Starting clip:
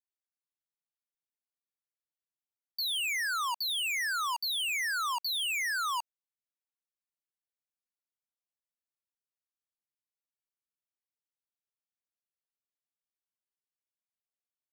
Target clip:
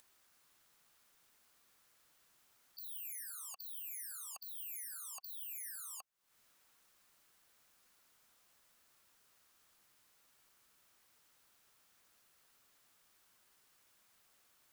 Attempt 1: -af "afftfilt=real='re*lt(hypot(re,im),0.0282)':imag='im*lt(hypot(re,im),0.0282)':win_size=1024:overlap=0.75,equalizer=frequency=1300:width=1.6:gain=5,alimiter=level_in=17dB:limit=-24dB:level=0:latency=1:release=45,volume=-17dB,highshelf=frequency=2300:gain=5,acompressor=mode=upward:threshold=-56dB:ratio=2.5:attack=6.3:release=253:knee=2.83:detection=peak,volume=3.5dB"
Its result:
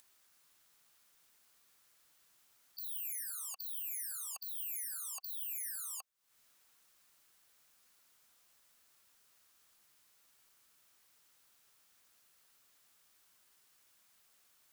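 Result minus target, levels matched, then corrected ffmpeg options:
2,000 Hz band −3.0 dB
-af "afftfilt=real='re*lt(hypot(re,im),0.0282)':imag='im*lt(hypot(re,im),0.0282)':win_size=1024:overlap=0.75,equalizer=frequency=1300:width=1.6:gain=5,alimiter=level_in=17dB:limit=-24dB:level=0:latency=1:release=45,volume=-17dB,acompressor=mode=upward:threshold=-56dB:ratio=2.5:attack=6.3:release=253:knee=2.83:detection=peak,volume=3.5dB"

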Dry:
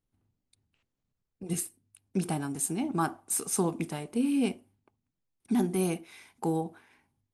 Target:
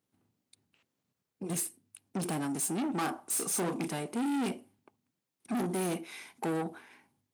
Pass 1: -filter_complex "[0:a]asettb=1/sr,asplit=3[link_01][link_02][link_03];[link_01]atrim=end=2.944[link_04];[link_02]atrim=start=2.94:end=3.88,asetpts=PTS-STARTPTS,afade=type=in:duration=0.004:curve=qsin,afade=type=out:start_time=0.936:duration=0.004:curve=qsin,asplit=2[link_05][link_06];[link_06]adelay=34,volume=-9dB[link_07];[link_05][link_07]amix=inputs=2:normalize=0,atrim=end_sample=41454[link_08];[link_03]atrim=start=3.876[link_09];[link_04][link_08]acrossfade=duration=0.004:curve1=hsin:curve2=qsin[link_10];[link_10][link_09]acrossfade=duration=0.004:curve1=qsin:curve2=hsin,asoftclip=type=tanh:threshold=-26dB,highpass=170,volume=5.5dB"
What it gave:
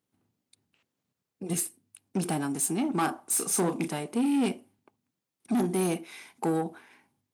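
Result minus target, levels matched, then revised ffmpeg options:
soft clipping: distortion −6 dB
-filter_complex "[0:a]asettb=1/sr,asplit=3[link_01][link_02][link_03];[link_01]atrim=end=2.944[link_04];[link_02]atrim=start=2.94:end=3.88,asetpts=PTS-STARTPTS,afade=type=in:duration=0.004:curve=qsin,afade=type=out:start_time=0.936:duration=0.004:curve=qsin,asplit=2[link_05][link_06];[link_06]adelay=34,volume=-9dB[link_07];[link_05][link_07]amix=inputs=2:normalize=0,atrim=end_sample=41454[link_08];[link_03]atrim=start=3.876[link_09];[link_04][link_08]acrossfade=duration=0.004:curve1=hsin:curve2=qsin[link_10];[link_10][link_09]acrossfade=duration=0.004:curve1=qsin:curve2=hsin,asoftclip=type=tanh:threshold=-34dB,highpass=170,volume=5.5dB"

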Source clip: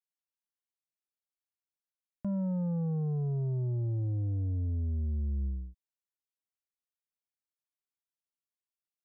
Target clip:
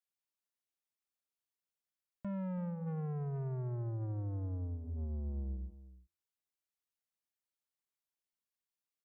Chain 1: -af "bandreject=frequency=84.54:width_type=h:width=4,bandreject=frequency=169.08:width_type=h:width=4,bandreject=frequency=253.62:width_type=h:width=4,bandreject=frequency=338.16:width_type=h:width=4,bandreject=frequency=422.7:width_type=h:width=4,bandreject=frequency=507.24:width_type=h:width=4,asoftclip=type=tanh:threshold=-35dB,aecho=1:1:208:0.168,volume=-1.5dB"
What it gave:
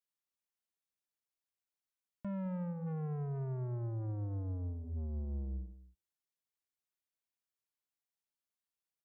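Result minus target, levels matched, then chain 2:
echo 121 ms early
-af "bandreject=frequency=84.54:width_type=h:width=4,bandreject=frequency=169.08:width_type=h:width=4,bandreject=frequency=253.62:width_type=h:width=4,bandreject=frequency=338.16:width_type=h:width=4,bandreject=frequency=422.7:width_type=h:width=4,bandreject=frequency=507.24:width_type=h:width=4,asoftclip=type=tanh:threshold=-35dB,aecho=1:1:329:0.168,volume=-1.5dB"

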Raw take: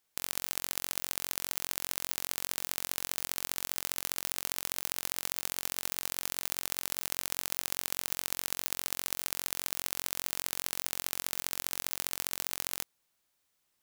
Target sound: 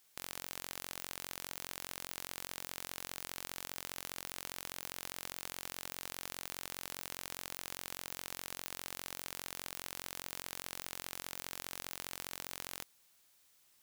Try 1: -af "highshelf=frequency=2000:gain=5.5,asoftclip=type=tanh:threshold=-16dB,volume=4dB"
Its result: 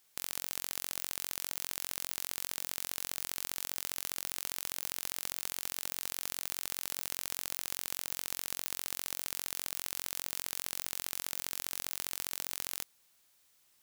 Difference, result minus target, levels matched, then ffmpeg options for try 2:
soft clipping: distortion −5 dB
-af "highshelf=frequency=2000:gain=5.5,asoftclip=type=tanh:threshold=-25.5dB,volume=4dB"

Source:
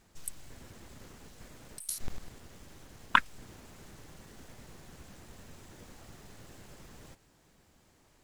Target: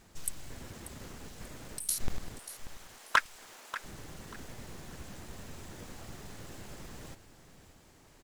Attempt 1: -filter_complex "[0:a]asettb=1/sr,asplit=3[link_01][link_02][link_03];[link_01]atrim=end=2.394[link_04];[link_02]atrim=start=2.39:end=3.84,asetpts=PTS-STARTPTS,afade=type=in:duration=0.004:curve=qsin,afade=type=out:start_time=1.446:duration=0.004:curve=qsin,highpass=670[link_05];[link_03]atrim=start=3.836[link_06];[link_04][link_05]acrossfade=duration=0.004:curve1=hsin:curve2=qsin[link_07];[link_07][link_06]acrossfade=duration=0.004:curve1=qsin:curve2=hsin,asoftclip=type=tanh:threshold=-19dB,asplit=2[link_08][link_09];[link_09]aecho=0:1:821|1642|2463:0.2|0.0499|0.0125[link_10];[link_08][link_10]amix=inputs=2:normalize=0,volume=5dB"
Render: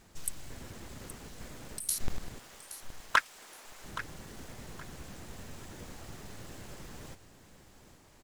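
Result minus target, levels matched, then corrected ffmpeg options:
echo 234 ms late
-filter_complex "[0:a]asettb=1/sr,asplit=3[link_01][link_02][link_03];[link_01]atrim=end=2.394[link_04];[link_02]atrim=start=2.39:end=3.84,asetpts=PTS-STARTPTS,afade=type=in:duration=0.004:curve=qsin,afade=type=out:start_time=1.446:duration=0.004:curve=qsin,highpass=670[link_05];[link_03]atrim=start=3.836[link_06];[link_04][link_05]acrossfade=duration=0.004:curve1=hsin:curve2=qsin[link_07];[link_07][link_06]acrossfade=duration=0.004:curve1=qsin:curve2=hsin,asoftclip=type=tanh:threshold=-19dB,asplit=2[link_08][link_09];[link_09]aecho=0:1:587|1174|1761:0.2|0.0499|0.0125[link_10];[link_08][link_10]amix=inputs=2:normalize=0,volume=5dB"

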